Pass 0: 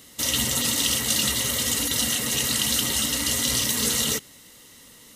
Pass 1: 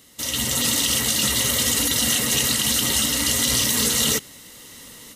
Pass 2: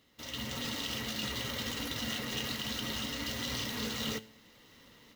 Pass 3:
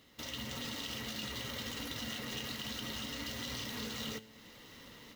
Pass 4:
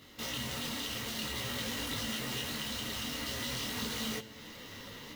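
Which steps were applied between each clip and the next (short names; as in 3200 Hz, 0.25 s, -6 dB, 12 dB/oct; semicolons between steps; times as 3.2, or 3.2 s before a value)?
AGC gain up to 10.5 dB; maximiser +5.5 dB; gain -8.5 dB
median filter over 5 samples; bell 9400 Hz -6 dB 0.95 oct; resonator 110 Hz, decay 0.46 s, harmonics all, mix 50%; gain -7 dB
compressor 2.5:1, threshold -47 dBFS, peak gain reduction 10.5 dB; gain +4.5 dB
in parallel at -3.5 dB: wrapped overs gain 40 dB; on the sum: detuned doubles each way 18 cents; gain +6.5 dB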